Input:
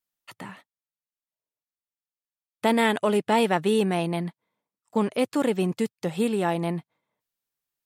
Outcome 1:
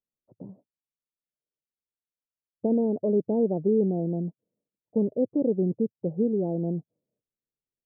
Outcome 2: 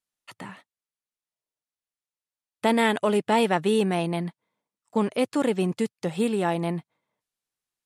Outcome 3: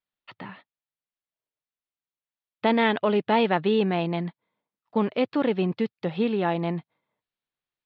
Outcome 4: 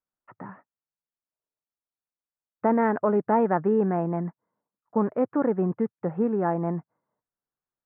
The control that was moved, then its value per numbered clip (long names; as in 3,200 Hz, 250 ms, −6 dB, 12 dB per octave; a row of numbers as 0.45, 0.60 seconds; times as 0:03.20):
Butterworth low-pass, frequency: 570, 12,000, 4,200, 1,600 Hertz